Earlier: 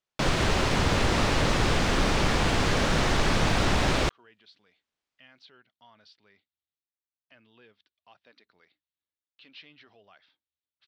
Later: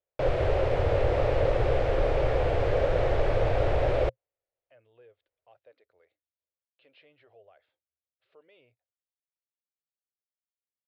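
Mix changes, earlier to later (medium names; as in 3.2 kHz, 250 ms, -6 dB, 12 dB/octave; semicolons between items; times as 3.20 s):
speech: entry -2.60 s; master: add FFT filter 120 Hz 0 dB, 200 Hz -21 dB, 530 Hz +9 dB, 1 kHz -9 dB, 2.3 kHz -9 dB, 6.4 kHz -24 dB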